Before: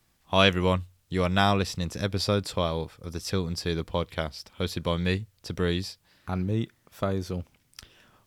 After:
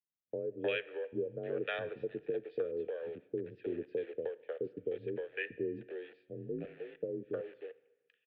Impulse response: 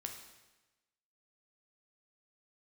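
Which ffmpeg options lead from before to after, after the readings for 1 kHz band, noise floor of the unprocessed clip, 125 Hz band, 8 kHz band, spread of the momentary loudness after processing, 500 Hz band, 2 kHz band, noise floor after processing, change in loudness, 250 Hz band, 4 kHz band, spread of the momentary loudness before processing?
−22.5 dB, −68 dBFS, −23.0 dB, below −40 dB, 9 LU, −6.5 dB, −11.5 dB, −81 dBFS, −11.5 dB, −14.0 dB, −21.5 dB, 13 LU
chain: -filter_complex "[0:a]afwtdn=0.0316,acrossover=split=280|1100[link_01][link_02][link_03];[link_02]aeval=exprs='val(0)*gte(abs(val(0)),0.0075)':channel_layout=same[link_04];[link_01][link_04][link_03]amix=inputs=3:normalize=0,asplit=3[link_05][link_06][link_07];[link_05]bandpass=frequency=530:width_type=q:width=8,volume=0dB[link_08];[link_06]bandpass=frequency=1840:width_type=q:width=8,volume=-6dB[link_09];[link_07]bandpass=frequency=2480:width_type=q:width=8,volume=-9dB[link_10];[link_08][link_09][link_10]amix=inputs=3:normalize=0,acompressor=threshold=-37dB:ratio=12,acrossover=split=570[link_11][link_12];[link_12]adelay=310[link_13];[link_11][link_13]amix=inputs=2:normalize=0,asplit=2[link_14][link_15];[1:a]atrim=start_sample=2205[link_16];[link_15][link_16]afir=irnorm=-1:irlink=0,volume=-8dB[link_17];[link_14][link_17]amix=inputs=2:normalize=0,highpass=frequency=190:width_type=q:width=0.5412,highpass=frequency=190:width_type=q:width=1.307,lowpass=frequency=3500:width_type=q:width=0.5176,lowpass=frequency=3500:width_type=q:width=0.7071,lowpass=frequency=3500:width_type=q:width=1.932,afreqshift=-65,volume=6.5dB"

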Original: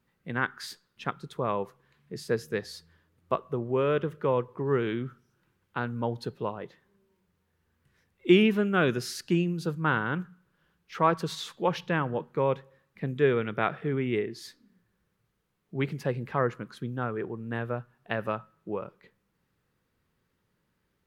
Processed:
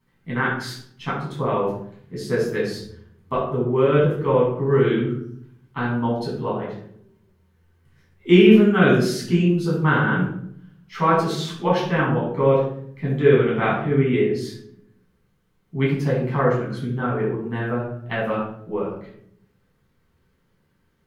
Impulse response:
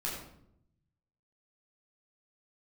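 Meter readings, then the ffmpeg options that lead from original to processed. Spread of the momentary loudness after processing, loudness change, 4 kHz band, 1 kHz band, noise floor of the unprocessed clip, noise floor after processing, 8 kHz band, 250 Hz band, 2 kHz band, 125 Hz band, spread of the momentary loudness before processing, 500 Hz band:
15 LU, +8.5 dB, +6.0 dB, +6.5 dB, −76 dBFS, −65 dBFS, +5.0 dB, +9.5 dB, +7.0 dB, +10.5 dB, 14 LU, +9.0 dB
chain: -filter_complex "[1:a]atrim=start_sample=2205,asetrate=52920,aresample=44100[link_01];[0:a][link_01]afir=irnorm=-1:irlink=0,volume=5dB"

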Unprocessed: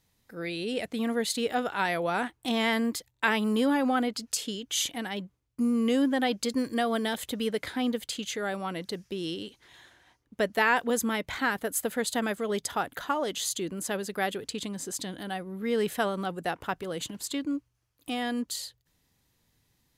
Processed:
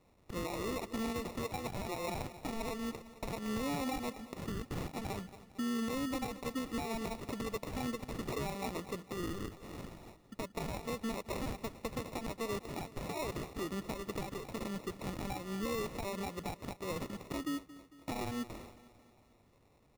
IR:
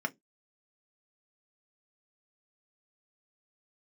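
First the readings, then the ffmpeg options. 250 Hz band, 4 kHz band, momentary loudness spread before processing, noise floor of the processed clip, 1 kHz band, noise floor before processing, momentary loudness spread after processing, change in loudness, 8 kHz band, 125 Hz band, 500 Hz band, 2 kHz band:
−9.5 dB, −13.0 dB, 10 LU, −66 dBFS, −10.5 dB, −74 dBFS, 7 LU, −10.0 dB, −13.5 dB, −0.5 dB, −9.5 dB, −14.5 dB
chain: -af "equalizer=frequency=2300:width=0.43:gain=10,acompressor=threshold=-35dB:ratio=5,aresample=8000,aresample=44100,acrusher=samples=28:mix=1:aa=0.000001,aecho=1:1:225|450|675|900|1125:0.133|0.072|0.0389|0.021|0.0113,alimiter=level_in=6dB:limit=-24dB:level=0:latency=1:release=81,volume=-6dB,volume=1dB"

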